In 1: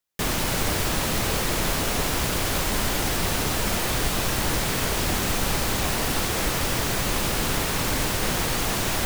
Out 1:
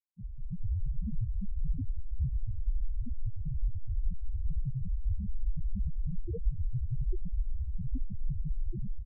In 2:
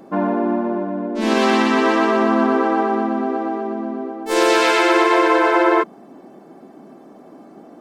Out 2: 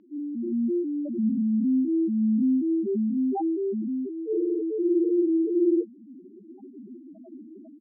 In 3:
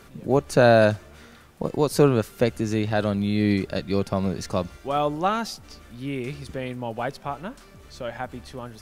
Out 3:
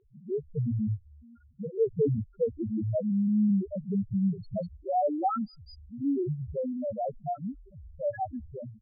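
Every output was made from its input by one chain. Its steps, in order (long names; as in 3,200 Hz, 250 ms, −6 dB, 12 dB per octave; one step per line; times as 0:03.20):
treble cut that deepens with the level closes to 360 Hz, closed at −14 dBFS
automatic gain control gain up to 12 dB
spectral peaks only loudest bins 1
multiband delay without the direct sound lows, highs 200 ms, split 4,500 Hz
level −3 dB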